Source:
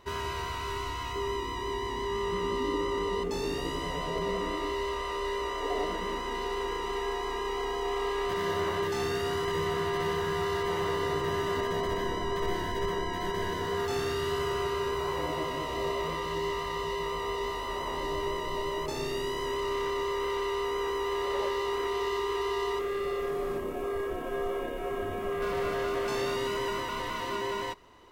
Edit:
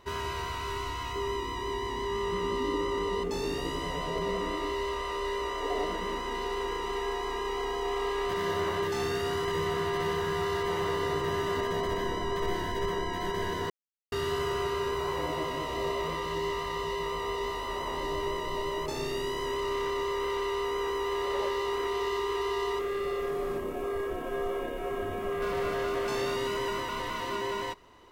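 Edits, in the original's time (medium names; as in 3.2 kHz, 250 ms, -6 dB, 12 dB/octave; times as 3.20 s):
13.70–14.12 s: mute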